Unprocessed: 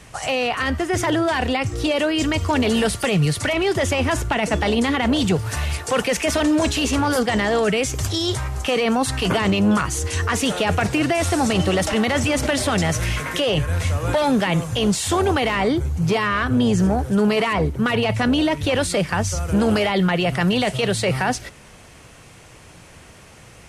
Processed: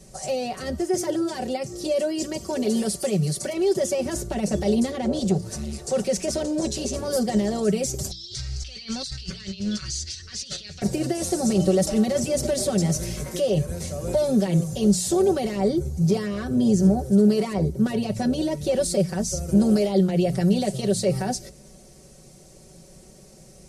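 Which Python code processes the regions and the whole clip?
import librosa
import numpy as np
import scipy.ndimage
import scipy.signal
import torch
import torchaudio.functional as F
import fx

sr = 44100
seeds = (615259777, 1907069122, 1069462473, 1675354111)

y = fx.chain(x, sr, fx.highpass(hz=220.0, slope=6),
    fx.notch(hz=3800.0, q=27.0), at=(0.79, 4.06))
y = fx.chain(y, sr, fx.lowpass(hz=9200.0, slope=12),
    fx.transformer_sat(knee_hz=400.0), at=(4.91, 6.96))
y = fx.chain(y, sr, fx.curve_eq(hz=(110.0, 180.0, 350.0, 840.0, 1500.0, 4600.0, 9400.0, 14000.0), db=(0, -15, -16, -19, 1, 13, -11, -29)),
    fx.over_compress(threshold_db=-28.0, ratio=-1.0), at=(8.11, 10.82))
y = fx.band_shelf(y, sr, hz=1700.0, db=-15.5, octaves=2.3)
y = fx.hum_notches(y, sr, base_hz=60, count=3)
y = y + 0.9 * np.pad(y, (int(5.3 * sr / 1000.0), 0))[:len(y)]
y = y * librosa.db_to_amplitude(-3.5)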